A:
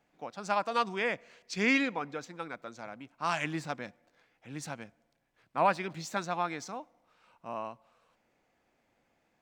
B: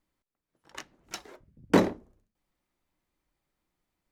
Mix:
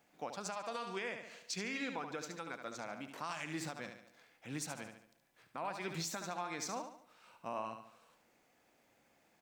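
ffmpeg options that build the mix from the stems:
-filter_complex "[0:a]lowshelf=f=65:g=-10,acompressor=threshold=-32dB:ratio=6,volume=1dB,asplit=3[a][b][c];[b]volume=-8.5dB[d];[1:a]highpass=760,adelay=1400,volume=-15.5dB[e];[c]apad=whole_len=243137[f];[e][f]sidechaincompress=threshold=-52dB:ratio=3:attack=7.8:release=645[g];[d]aecho=0:1:72|144|216|288|360:1|0.39|0.152|0.0593|0.0231[h];[a][g][h]amix=inputs=3:normalize=0,highshelf=f=5.9k:g=10,alimiter=level_in=5.5dB:limit=-24dB:level=0:latency=1:release=269,volume=-5.5dB"

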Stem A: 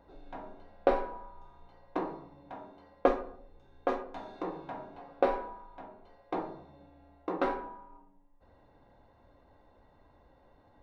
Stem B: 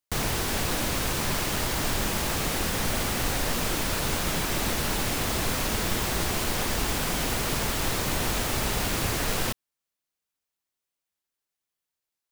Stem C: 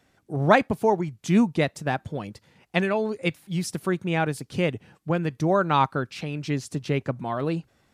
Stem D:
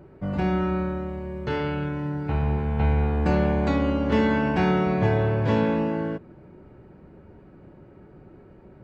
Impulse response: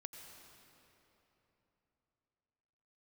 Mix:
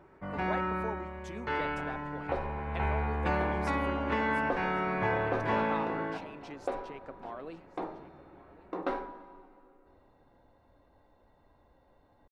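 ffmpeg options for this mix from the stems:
-filter_complex "[0:a]adelay=1450,volume=-5dB,asplit=2[a][b];[b]volume=-5dB[c];[2:a]acompressor=threshold=-28dB:ratio=2,highpass=370,highshelf=f=4k:g=-10.5,volume=-10dB,asplit=2[d][e];[e]volume=-18.5dB[f];[3:a]equalizer=f=125:t=o:w=1:g=-6,equalizer=f=1k:t=o:w=1:g=10,equalizer=f=2k:t=o:w=1:g=9,volume=-13dB,asplit=2[g][h];[h]volume=-3dB[i];[4:a]atrim=start_sample=2205[j];[c][i]amix=inputs=2:normalize=0[k];[k][j]afir=irnorm=-1:irlink=0[l];[f]aecho=0:1:1103:1[m];[a][d][g][l][m]amix=inputs=5:normalize=0,alimiter=limit=-17.5dB:level=0:latency=1:release=491"

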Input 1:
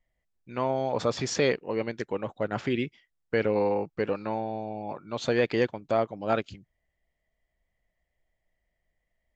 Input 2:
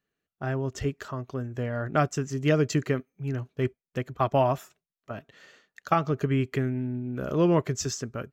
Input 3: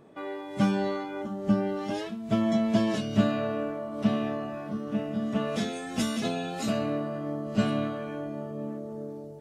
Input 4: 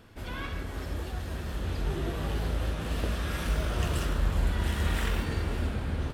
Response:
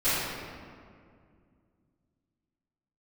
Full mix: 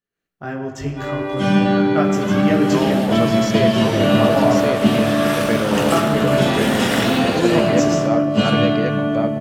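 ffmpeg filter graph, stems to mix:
-filter_complex "[0:a]adelay=2150,volume=-7dB,asplit=2[a][b];[b]volume=-3.5dB[c];[1:a]flanger=delay=16.5:depth=4.8:speed=0.41,volume=-5dB,asplit=3[d][e][f];[e]volume=-17dB[g];[2:a]equalizer=f=3.1k:t=o:w=0.43:g=7.5,adelay=800,volume=-2.5dB,asplit=2[h][i];[i]volume=-11dB[j];[3:a]dynaudnorm=f=490:g=3:m=4dB,highpass=280,adelay=1950,volume=-1dB[k];[f]apad=whole_len=450157[l];[h][l]sidechaincompress=threshold=-50dB:ratio=8:attack=16:release=129[m];[4:a]atrim=start_sample=2205[n];[g][j]amix=inputs=2:normalize=0[o];[o][n]afir=irnorm=-1:irlink=0[p];[c]aecho=0:1:1092:1[q];[a][d][m][k][p][q]amix=inputs=6:normalize=0,dynaudnorm=f=100:g=3:m=10dB"

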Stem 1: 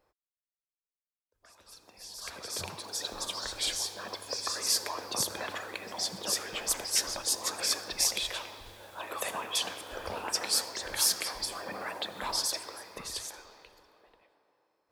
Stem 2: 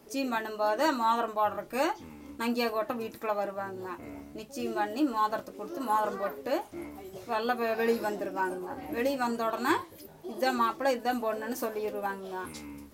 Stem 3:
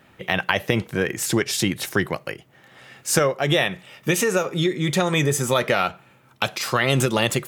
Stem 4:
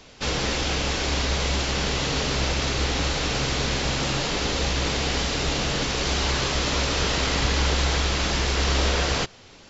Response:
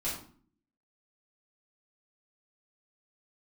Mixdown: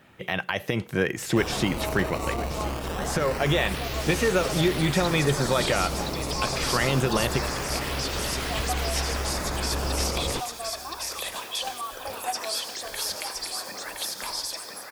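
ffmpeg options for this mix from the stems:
-filter_complex "[0:a]crystalizer=i=3:c=0,adelay=2000,volume=-2.5dB,asplit=2[a][b];[b]volume=-4.5dB[c];[1:a]asplit=3[d][e][f];[d]bandpass=f=730:t=q:w=8,volume=0dB[g];[e]bandpass=f=1.09k:t=q:w=8,volume=-6dB[h];[f]bandpass=f=2.44k:t=q:w=8,volume=-9dB[i];[g][h][i]amix=inputs=3:normalize=0,adelay=1200,volume=0.5dB[j];[2:a]alimiter=limit=-9.5dB:level=0:latency=1:release=200,volume=-1.5dB,asplit=2[k][l];[l]volume=-15dB[m];[3:a]acrusher=samples=15:mix=1:aa=0.000001:lfo=1:lforange=24:lforate=0.24,adelay=1150,volume=-6.5dB,asplit=2[n][o];[o]volume=-23.5dB[p];[c][m][p]amix=inputs=3:normalize=0,aecho=0:1:1018:1[q];[a][j][k][n][q]amix=inputs=5:normalize=0,acrossover=split=3900[r][s];[s]acompressor=threshold=-34dB:ratio=4:attack=1:release=60[t];[r][t]amix=inputs=2:normalize=0"

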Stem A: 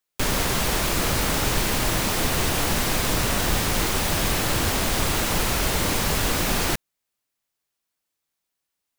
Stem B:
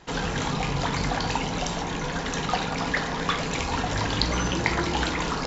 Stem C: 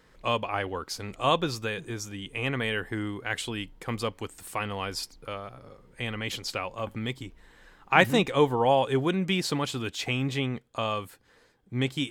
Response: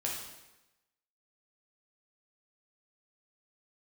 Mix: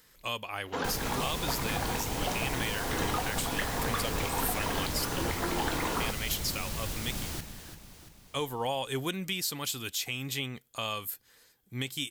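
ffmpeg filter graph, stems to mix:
-filter_complex "[0:a]acrossover=split=290|3000[a][b][c];[b]acompressor=threshold=-36dB:ratio=2[d];[a][d][c]amix=inputs=3:normalize=0,adelay=650,volume=-15dB,asplit=3[e][f][g];[f]volume=-12.5dB[h];[g]volume=-9dB[i];[1:a]highpass=290,highshelf=f=3.5k:g=-10.5,adelay=650,volume=-1.5dB[j];[2:a]crystalizer=i=7.5:c=0,volume=-9.5dB,asplit=3[k][l][m];[k]atrim=end=7.76,asetpts=PTS-STARTPTS,afade=t=out:st=7.756:d=0.004:c=hsin[n];[l]atrim=start=7.76:end=8.34,asetpts=PTS-STARTPTS,volume=0[o];[m]atrim=start=8.34,asetpts=PTS-STARTPTS,afade=t=in:d=0.004:c=hsin[p];[n][o][p]concat=n=3:v=0:a=1[q];[j][q]amix=inputs=2:normalize=0,equalizer=f=13k:w=6.5:g=13.5,alimiter=limit=-21dB:level=0:latency=1:release=278,volume=0dB[r];[3:a]atrim=start_sample=2205[s];[h][s]afir=irnorm=-1:irlink=0[t];[i]aecho=0:1:340|680|1020|1360|1700|2040|2380|2720:1|0.55|0.303|0.166|0.0915|0.0503|0.0277|0.0152[u];[e][r][t][u]amix=inputs=4:normalize=0,equalizer=f=95:w=0.45:g=3"

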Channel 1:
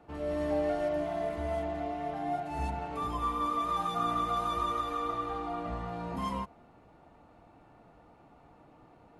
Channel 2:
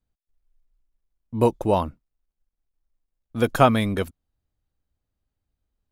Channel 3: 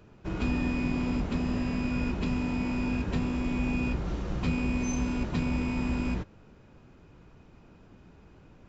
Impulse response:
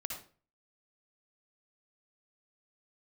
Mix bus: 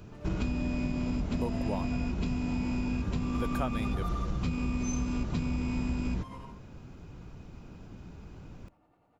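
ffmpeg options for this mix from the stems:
-filter_complex "[0:a]acrossover=split=440[a][b];[a]aeval=exprs='val(0)*(1-0.7/2+0.7/2*cos(2*PI*10*n/s))':c=same[c];[b]aeval=exprs='val(0)*(1-0.7/2-0.7/2*cos(2*PI*10*n/s))':c=same[d];[c][d]amix=inputs=2:normalize=0,volume=-1.5dB,asplit=2[e][f];[f]volume=-6dB[g];[1:a]volume=-5.5dB,asplit=2[h][i];[2:a]bass=f=250:g=6,treble=f=4k:g=6,bandreject=f=1.8k:w=21,volume=2dB,asplit=2[j][k];[k]volume=-19.5dB[l];[i]apad=whole_len=410045[m];[e][m]sidechaingate=range=-33dB:threshold=-55dB:ratio=16:detection=peak[n];[3:a]atrim=start_sample=2205[o];[g][l]amix=inputs=2:normalize=0[p];[p][o]afir=irnorm=-1:irlink=0[q];[n][h][j][q]amix=inputs=4:normalize=0,acompressor=threshold=-28dB:ratio=6"

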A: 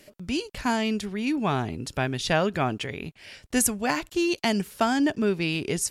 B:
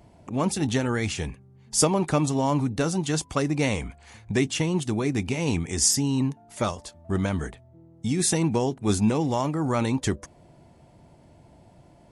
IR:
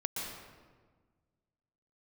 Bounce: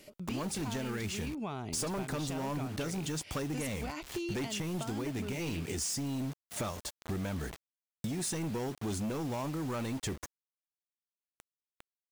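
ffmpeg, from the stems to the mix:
-filter_complex "[0:a]bandreject=f=1.7k:w=5.6,acompressor=threshold=-26dB:ratio=6,volume=-2.5dB[a];[1:a]asoftclip=type=tanh:threshold=-23.5dB,acrusher=bits=6:mix=0:aa=0.000001,volume=2.5dB[b];[a][b]amix=inputs=2:normalize=0,acompressor=threshold=-34dB:ratio=6"

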